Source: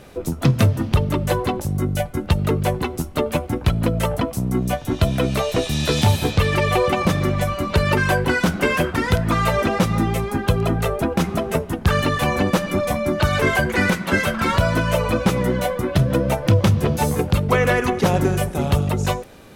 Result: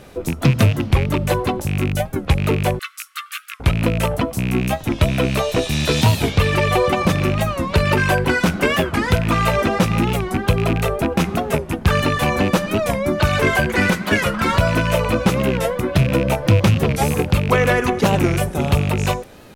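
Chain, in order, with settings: rattling part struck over -19 dBFS, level -17 dBFS; 2.79–3.61 brick-wall FIR high-pass 1100 Hz; record warp 45 rpm, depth 160 cents; gain +1.5 dB

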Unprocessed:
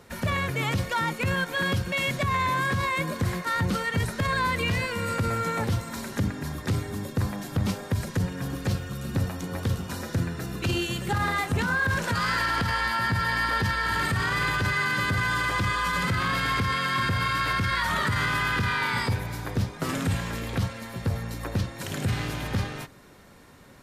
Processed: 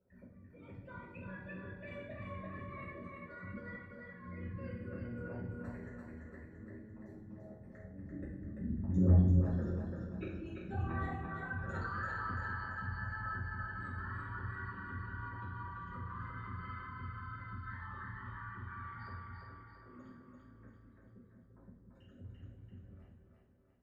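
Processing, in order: formant sharpening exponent 3; Doppler pass-by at 9.06, 17 m/s, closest 2.4 m; in parallel at 0 dB: compressor 6:1, threshold -57 dBFS, peak gain reduction 28 dB; on the sum: auto swell 0.488 s; split-band echo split 340 Hz, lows 0.19 s, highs 0.34 s, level -3.5 dB; reverb, pre-delay 3 ms, DRR -9.5 dB; gain -1.5 dB

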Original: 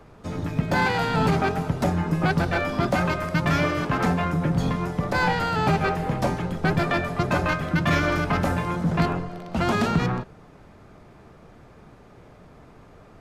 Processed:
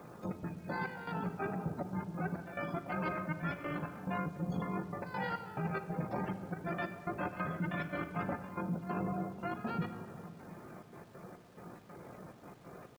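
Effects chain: CVSD 64 kbps; spectral gate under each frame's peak -25 dB strong; HPF 140 Hz 12 dB/oct; high shelf 6900 Hz -10 dB; reverse; compressor 20:1, threshold -34 dBFS, peak gain reduction 17 dB; reverse; tempo 0.61×; step gate "xxx.x.xx..xx.x" 84 bpm -12 dB; bit-crush 11-bit; granular stretch 0.6×, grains 39 ms; shoebox room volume 3700 m³, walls mixed, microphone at 0.89 m; gain +1.5 dB

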